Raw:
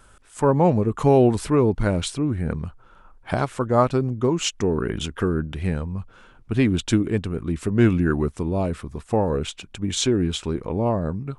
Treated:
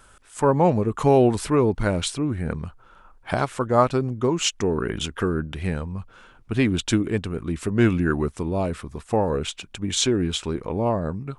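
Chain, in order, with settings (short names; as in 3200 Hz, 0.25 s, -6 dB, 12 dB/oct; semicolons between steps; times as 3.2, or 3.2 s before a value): low shelf 490 Hz -4.5 dB; gain +2 dB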